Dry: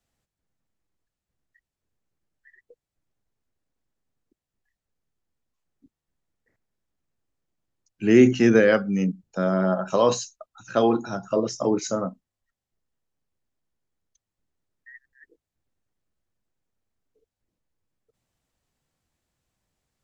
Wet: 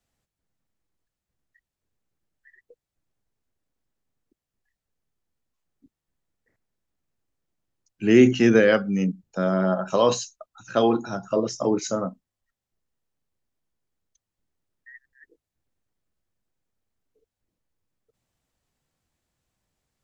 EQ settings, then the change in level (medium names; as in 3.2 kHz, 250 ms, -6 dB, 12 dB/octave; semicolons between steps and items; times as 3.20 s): dynamic bell 3.1 kHz, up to +4 dB, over -43 dBFS, Q 2.5; 0.0 dB